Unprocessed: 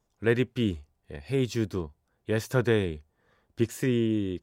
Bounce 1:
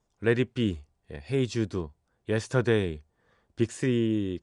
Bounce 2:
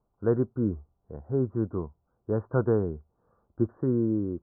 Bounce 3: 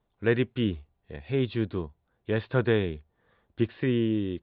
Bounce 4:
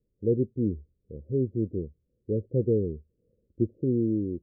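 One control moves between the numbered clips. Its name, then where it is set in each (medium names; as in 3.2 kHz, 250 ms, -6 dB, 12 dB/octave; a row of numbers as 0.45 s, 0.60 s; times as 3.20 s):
steep low-pass, frequency: 10 kHz, 1.4 kHz, 4 kHz, 540 Hz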